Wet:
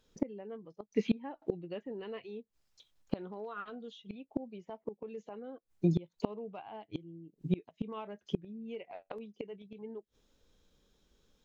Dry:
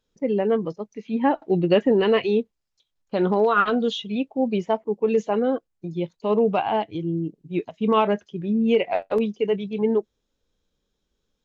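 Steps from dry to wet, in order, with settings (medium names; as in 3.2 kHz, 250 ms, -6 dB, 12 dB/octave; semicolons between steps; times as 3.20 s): inverted gate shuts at -22 dBFS, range -29 dB; trim +5.5 dB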